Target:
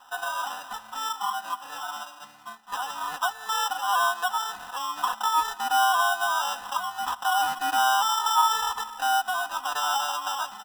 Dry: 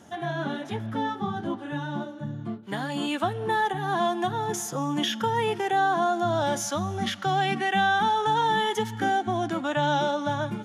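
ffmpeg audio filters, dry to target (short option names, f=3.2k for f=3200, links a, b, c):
-filter_complex "[0:a]asplit=2[a][b];[b]acompressor=threshold=-32dB:ratio=6,volume=-1dB[c];[a][c]amix=inputs=2:normalize=0,acrossover=split=500 4200:gain=0.112 1 0.224[d][e][f];[d][e][f]amix=inputs=3:normalize=0,acrusher=samples=20:mix=1:aa=0.000001,lowshelf=f=660:t=q:w=3:g=-12,aecho=1:1:4:0.7,volume=-3.5dB"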